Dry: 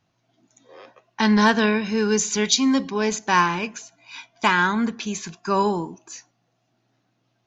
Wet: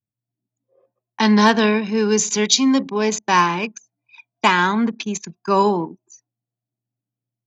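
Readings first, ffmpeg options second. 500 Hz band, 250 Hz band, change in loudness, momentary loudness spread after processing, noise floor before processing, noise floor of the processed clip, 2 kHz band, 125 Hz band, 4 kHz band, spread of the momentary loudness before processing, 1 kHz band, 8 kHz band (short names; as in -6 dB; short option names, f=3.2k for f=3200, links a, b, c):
+4.0 dB, +3.0 dB, +3.0 dB, 12 LU, -71 dBFS, under -85 dBFS, +1.0 dB, +2.5 dB, +3.5 dB, 22 LU, +3.5 dB, n/a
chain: -filter_complex "[0:a]anlmdn=25.1,highpass=89,equalizer=f=1.5k:w=3.6:g=-5.5,acrossover=split=200[a][b];[b]dynaudnorm=f=670:g=3:m=4dB[c];[a][c]amix=inputs=2:normalize=0,volume=1.5dB"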